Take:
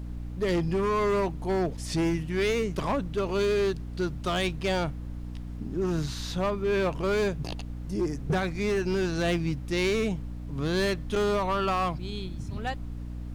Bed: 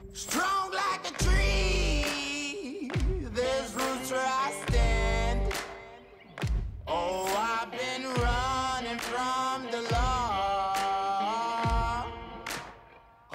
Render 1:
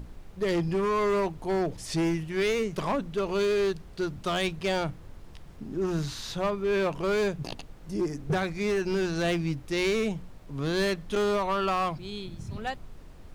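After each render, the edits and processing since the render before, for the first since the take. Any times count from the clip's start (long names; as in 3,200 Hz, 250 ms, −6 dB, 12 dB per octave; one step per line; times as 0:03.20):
mains-hum notches 60/120/180/240/300 Hz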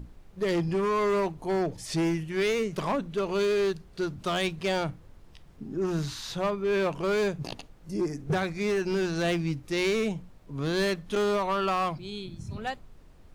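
noise reduction from a noise print 6 dB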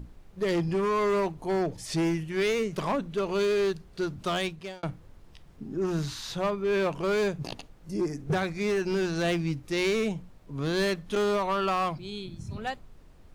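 0:04.33–0:04.83: fade out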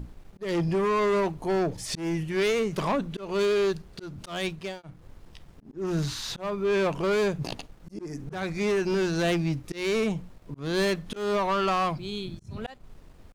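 volume swells 244 ms
leveller curve on the samples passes 1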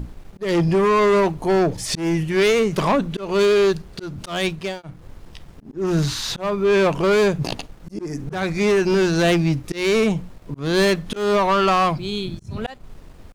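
level +8 dB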